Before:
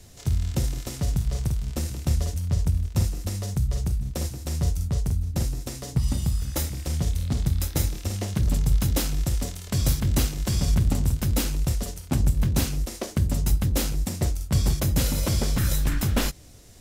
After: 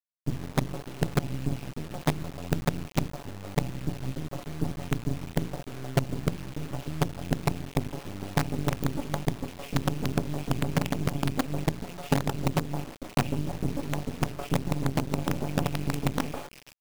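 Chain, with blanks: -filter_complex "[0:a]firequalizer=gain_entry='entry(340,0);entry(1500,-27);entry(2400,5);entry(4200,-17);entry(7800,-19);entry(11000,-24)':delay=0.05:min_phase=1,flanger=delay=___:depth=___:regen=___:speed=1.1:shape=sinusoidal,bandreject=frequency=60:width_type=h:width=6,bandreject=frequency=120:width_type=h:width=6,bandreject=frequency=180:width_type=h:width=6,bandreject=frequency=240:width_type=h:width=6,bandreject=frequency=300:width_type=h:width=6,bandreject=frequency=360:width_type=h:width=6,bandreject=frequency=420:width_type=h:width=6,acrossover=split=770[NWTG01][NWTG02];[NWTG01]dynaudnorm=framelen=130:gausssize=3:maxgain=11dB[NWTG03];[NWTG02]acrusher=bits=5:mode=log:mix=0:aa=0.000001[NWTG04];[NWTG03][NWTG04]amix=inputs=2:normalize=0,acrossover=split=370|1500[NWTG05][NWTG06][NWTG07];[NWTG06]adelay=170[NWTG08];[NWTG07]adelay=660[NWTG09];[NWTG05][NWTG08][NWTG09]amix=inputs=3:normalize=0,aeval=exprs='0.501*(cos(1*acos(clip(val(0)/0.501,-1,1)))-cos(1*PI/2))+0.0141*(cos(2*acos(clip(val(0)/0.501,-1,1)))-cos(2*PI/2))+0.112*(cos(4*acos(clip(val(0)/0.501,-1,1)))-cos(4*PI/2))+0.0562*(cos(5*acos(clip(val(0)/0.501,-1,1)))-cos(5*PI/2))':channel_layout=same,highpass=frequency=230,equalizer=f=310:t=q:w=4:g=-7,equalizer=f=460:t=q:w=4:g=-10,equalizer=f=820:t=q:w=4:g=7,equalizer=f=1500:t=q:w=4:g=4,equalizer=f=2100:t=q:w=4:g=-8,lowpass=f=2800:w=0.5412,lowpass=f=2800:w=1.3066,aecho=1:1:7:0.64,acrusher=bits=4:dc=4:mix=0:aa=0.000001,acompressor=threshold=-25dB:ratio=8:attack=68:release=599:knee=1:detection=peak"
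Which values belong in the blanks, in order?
5.6, 2, 56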